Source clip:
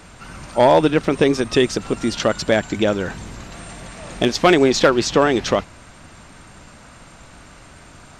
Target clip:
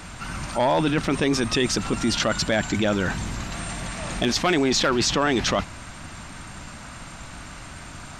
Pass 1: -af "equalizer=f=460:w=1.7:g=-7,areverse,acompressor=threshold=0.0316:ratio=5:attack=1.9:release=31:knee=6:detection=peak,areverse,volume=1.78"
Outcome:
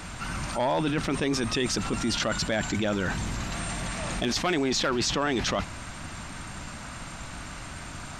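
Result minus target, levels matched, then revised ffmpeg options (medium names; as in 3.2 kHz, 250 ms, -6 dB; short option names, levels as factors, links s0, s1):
compression: peak gain reduction +5 dB
-af "equalizer=f=460:w=1.7:g=-7,areverse,acompressor=threshold=0.0668:ratio=5:attack=1.9:release=31:knee=6:detection=peak,areverse,volume=1.78"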